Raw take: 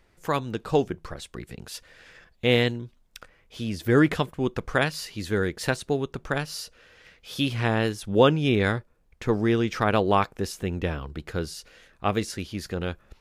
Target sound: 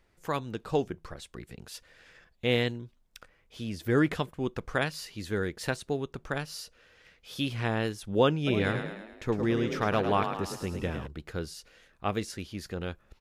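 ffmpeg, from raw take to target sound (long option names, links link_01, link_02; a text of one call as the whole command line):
ffmpeg -i in.wav -filter_complex "[0:a]asplit=3[link_01][link_02][link_03];[link_01]afade=type=out:start_time=8.46:duration=0.02[link_04];[link_02]asplit=7[link_05][link_06][link_07][link_08][link_09][link_10][link_11];[link_06]adelay=107,afreqshift=35,volume=-7.5dB[link_12];[link_07]adelay=214,afreqshift=70,volume=-13dB[link_13];[link_08]adelay=321,afreqshift=105,volume=-18.5dB[link_14];[link_09]adelay=428,afreqshift=140,volume=-24dB[link_15];[link_10]adelay=535,afreqshift=175,volume=-29.6dB[link_16];[link_11]adelay=642,afreqshift=210,volume=-35.1dB[link_17];[link_05][link_12][link_13][link_14][link_15][link_16][link_17]amix=inputs=7:normalize=0,afade=type=in:start_time=8.46:duration=0.02,afade=type=out:start_time=11.06:duration=0.02[link_18];[link_03]afade=type=in:start_time=11.06:duration=0.02[link_19];[link_04][link_18][link_19]amix=inputs=3:normalize=0,volume=-5.5dB" out.wav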